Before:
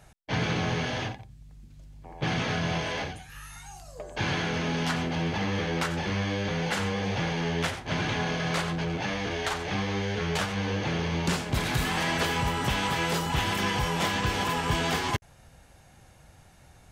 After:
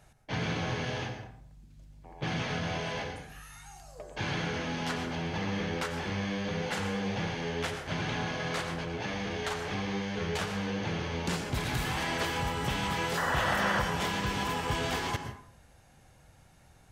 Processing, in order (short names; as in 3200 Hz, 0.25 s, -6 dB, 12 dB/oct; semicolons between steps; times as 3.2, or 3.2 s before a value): painted sound noise, 13.17–13.82, 480–2000 Hz -26 dBFS; plate-style reverb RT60 0.6 s, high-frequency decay 0.55×, pre-delay 0.1 s, DRR 7.5 dB; gain -5 dB